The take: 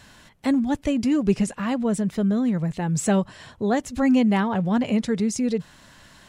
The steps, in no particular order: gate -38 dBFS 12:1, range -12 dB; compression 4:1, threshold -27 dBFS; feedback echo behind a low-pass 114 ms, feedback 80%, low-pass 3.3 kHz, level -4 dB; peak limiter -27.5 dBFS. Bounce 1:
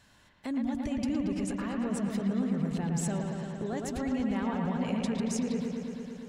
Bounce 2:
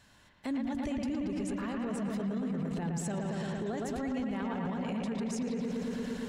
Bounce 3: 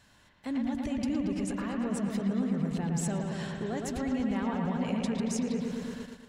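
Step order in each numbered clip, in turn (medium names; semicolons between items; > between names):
compression > gate > peak limiter > feedback echo behind a low-pass; compression > feedback echo behind a low-pass > gate > peak limiter; compression > peak limiter > feedback echo behind a low-pass > gate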